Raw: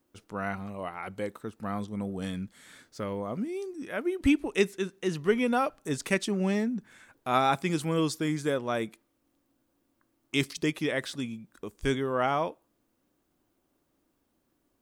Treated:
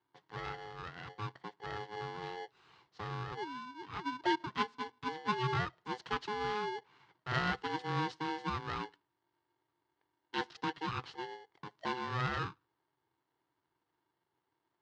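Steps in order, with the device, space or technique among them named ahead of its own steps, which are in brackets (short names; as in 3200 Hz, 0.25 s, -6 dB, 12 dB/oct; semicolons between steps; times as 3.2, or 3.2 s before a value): ring modulator pedal into a guitar cabinet (polarity switched at an audio rate 630 Hz; speaker cabinet 89–4200 Hz, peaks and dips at 130 Hz +8 dB, 230 Hz -8 dB, 590 Hz -9 dB, 2400 Hz -8 dB, 3600 Hz -3 dB); gain -7 dB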